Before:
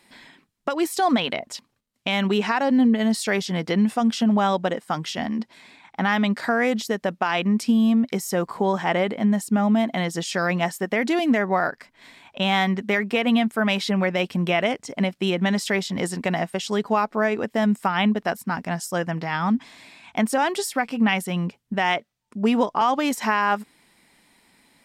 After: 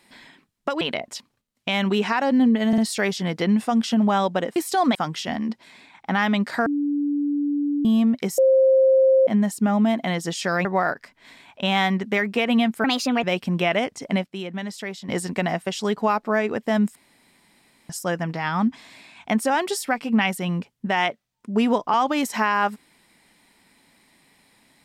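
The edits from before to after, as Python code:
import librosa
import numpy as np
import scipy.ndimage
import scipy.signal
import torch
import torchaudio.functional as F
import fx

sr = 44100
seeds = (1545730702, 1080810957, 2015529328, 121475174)

y = fx.edit(x, sr, fx.move(start_s=0.81, length_s=0.39, to_s=4.85),
    fx.stutter(start_s=3.07, slice_s=0.05, count=3),
    fx.bleep(start_s=6.56, length_s=1.19, hz=289.0, db=-20.0),
    fx.bleep(start_s=8.28, length_s=0.89, hz=529.0, db=-12.5),
    fx.cut(start_s=10.55, length_s=0.87),
    fx.speed_span(start_s=13.61, length_s=0.5, speed=1.27),
    fx.clip_gain(start_s=15.12, length_s=0.84, db=-9.0),
    fx.room_tone_fill(start_s=17.83, length_s=0.94), tone=tone)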